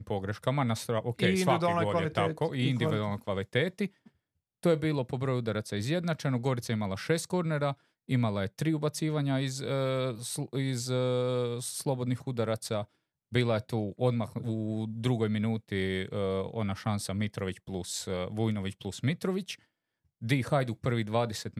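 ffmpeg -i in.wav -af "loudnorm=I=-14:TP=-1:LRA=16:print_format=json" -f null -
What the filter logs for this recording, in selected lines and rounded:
"input_i" : "-31.2",
"input_tp" : "-11.4",
"input_lra" : "3.3",
"input_thresh" : "-41.3",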